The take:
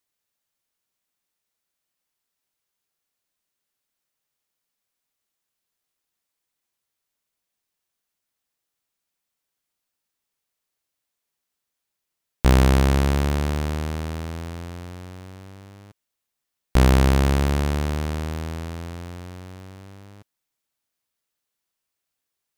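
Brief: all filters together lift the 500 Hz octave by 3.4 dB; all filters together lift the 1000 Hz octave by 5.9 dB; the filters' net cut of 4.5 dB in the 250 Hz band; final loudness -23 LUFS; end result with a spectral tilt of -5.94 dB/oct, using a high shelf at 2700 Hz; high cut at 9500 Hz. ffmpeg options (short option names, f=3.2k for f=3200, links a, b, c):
-af "lowpass=9.5k,equalizer=f=250:t=o:g=-8.5,equalizer=f=500:t=o:g=5,equalizer=f=1k:t=o:g=7,highshelf=f=2.7k:g=-4.5,volume=-0.5dB"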